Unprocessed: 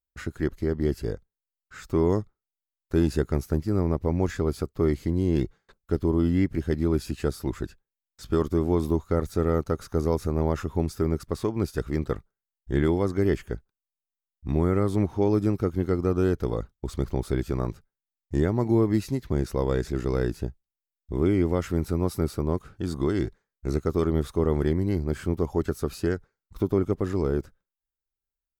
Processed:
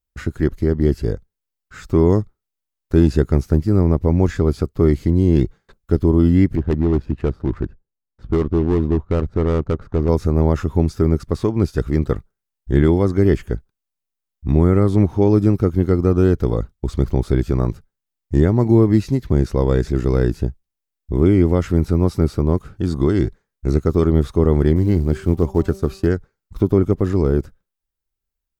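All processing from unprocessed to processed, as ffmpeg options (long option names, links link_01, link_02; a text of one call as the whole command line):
ffmpeg -i in.wav -filter_complex "[0:a]asettb=1/sr,asplit=3[link_01][link_02][link_03];[link_01]atrim=end=6.554[link_04];[link_02]atrim=start=6.55:end=10.09,asetpts=PTS-STARTPTS,afade=type=in:duration=0.004:curve=qsin,afade=type=out:start_time=3.536:duration=0.004:curve=qsin,asoftclip=type=hard:threshold=-20dB,adynamicsmooth=sensitivity=6:basefreq=870[link_05];[link_03]atrim=start=10.086[link_06];[link_04][link_05]acrossfade=duration=0.004:curve1=hsin:curve2=qsin[link_07];[link_07][link_06]acrossfade=duration=0.004:curve1=qsin:curve2=hsin,asettb=1/sr,asplit=3[link_08][link_09][link_10];[link_08]atrim=end=24.764[link_11];[link_09]atrim=start=24.76:end=26.07,asetpts=PTS-STARTPTS,afade=type=in:duration=0.004:curve=qsin,afade=type=out:start_time=1.306:duration=0.004:curve=qsin,agate=range=-33dB:threshold=-37dB:ratio=3:release=100:detection=peak,bandreject=frequency=193.4:width_type=h:width=4,bandreject=frequency=386.8:width_type=h:width=4,bandreject=frequency=580.2:width_type=h:width=4,bandreject=frequency=773.6:width_type=h:width=4,bandreject=frequency=967:width_type=h:width=4,bandreject=frequency=1160.4:width_type=h:width=4,acrusher=bits=8:mode=log:mix=0:aa=0.000001[link_12];[link_10]atrim=start=26.066[link_13];[link_11][link_12]acrossfade=duration=0.004:curve1=hsin:curve2=qsin[link_14];[link_14][link_13]acrossfade=duration=0.004:curve1=qsin:curve2=hsin,acrossover=split=7600[link_15][link_16];[link_16]acompressor=threshold=-56dB:ratio=4:attack=1:release=60[link_17];[link_15][link_17]amix=inputs=2:normalize=0,lowshelf=frequency=340:gain=6.5,volume=4.5dB" out.wav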